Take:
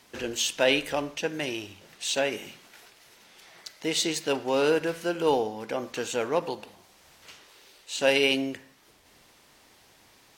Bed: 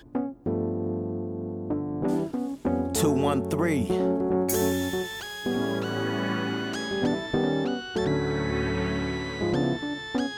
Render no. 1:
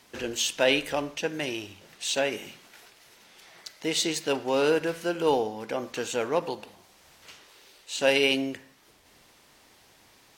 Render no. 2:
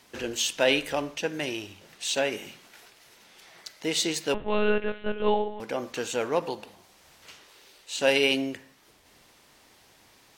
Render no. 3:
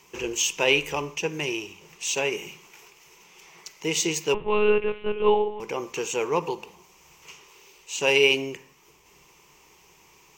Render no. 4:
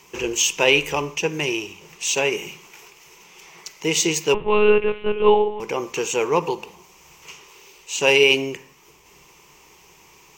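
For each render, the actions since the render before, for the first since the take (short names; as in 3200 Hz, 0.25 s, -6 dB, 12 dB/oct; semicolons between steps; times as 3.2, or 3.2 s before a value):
nothing audible
4.34–5.6 monotone LPC vocoder at 8 kHz 210 Hz
ripple EQ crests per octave 0.75, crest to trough 12 dB
gain +5 dB; limiter -3 dBFS, peak gain reduction 2.5 dB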